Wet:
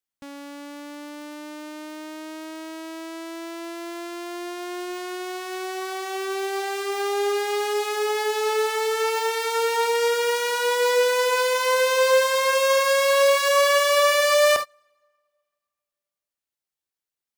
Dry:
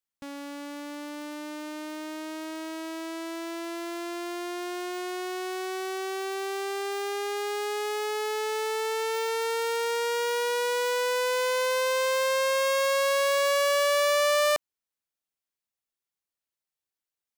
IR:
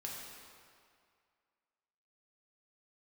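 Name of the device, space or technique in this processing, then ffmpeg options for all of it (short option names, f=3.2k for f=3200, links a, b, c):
keyed gated reverb: -filter_complex "[0:a]asplit=3[a][b][c];[1:a]atrim=start_sample=2205[d];[b][d]afir=irnorm=-1:irlink=0[e];[c]apad=whole_len=766272[f];[e][f]sidechaingate=range=-31dB:threshold=-32dB:ratio=16:detection=peak,volume=2dB[g];[a][g]amix=inputs=2:normalize=0"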